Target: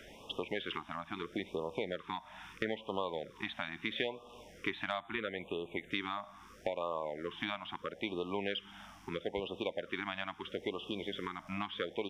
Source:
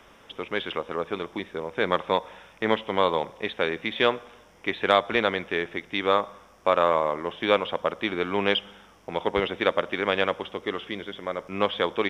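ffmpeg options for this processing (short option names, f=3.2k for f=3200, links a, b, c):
-filter_complex "[0:a]acompressor=threshold=-34dB:ratio=6,asettb=1/sr,asplit=3[a][b][c];[a]atrim=end=5.004[d];[b]atrim=start=5:end=5.91,asetpts=PTS-STARTPTS,afade=t=in:d=0.004:c=qsin,afade=t=out:st=0.906:d=0.004:c=qsin,asuperstop=centerf=5100:order=4:qfactor=1.5[e];[c]atrim=start=5.906[f];[d][e]acrossfade=d=0.004:c1=hsin:c2=qsin[g];[g][f]acrossfade=d=0.004:c1=qsin:c2=hsin,afftfilt=real='re*(1-between(b*sr/1024,410*pow(1800/410,0.5+0.5*sin(2*PI*0.76*pts/sr))/1.41,410*pow(1800/410,0.5+0.5*sin(2*PI*0.76*pts/sr))*1.41))':imag='im*(1-between(b*sr/1024,410*pow(1800/410,0.5+0.5*sin(2*PI*0.76*pts/sr))/1.41,410*pow(1800/410,0.5+0.5*sin(2*PI*0.76*pts/sr))*1.41))':win_size=1024:overlap=0.75,volume=1dB"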